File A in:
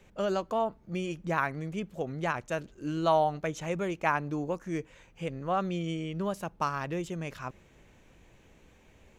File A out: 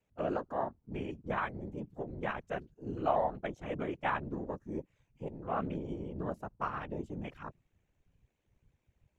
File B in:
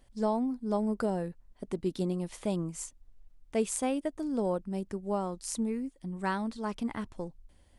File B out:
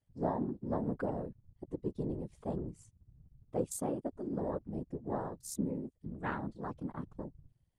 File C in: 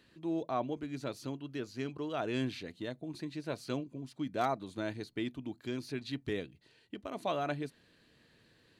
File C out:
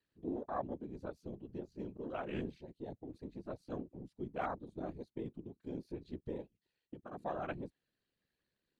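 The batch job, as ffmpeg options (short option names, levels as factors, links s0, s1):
-af "aeval=exprs='val(0)*sin(2*PI*35*n/s)':c=same,afwtdn=0.00631,afftfilt=real='hypot(re,im)*cos(2*PI*random(0))':imag='hypot(re,im)*sin(2*PI*random(1))':win_size=512:overlap=0.75,volume=1.5"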